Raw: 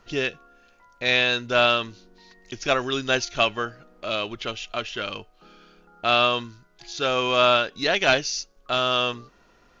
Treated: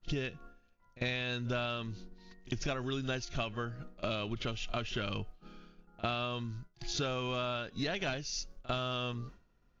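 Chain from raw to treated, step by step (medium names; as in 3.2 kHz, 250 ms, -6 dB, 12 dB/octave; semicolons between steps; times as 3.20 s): expander -44 dBFS; tone controls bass +14 dB, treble -1 dB; compression 12:1, threshold -32 dBFS, peak gain reduction 20 dB; pre-echo 49 ms -20 dB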